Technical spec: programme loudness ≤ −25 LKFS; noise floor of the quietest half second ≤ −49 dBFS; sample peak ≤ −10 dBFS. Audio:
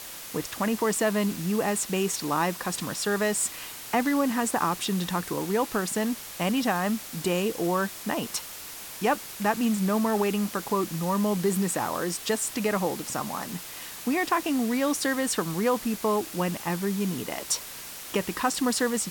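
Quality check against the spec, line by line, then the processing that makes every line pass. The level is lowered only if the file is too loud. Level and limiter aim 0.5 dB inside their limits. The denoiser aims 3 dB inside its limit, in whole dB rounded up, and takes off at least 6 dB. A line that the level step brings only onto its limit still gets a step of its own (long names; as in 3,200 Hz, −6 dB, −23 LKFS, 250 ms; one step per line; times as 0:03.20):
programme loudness −27.5 LKFS: in spec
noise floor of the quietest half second −40 dBFS: out of spec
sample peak −11.0 dBFS: in spec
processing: broadband denoise 12 dB, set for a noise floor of −40 dBFS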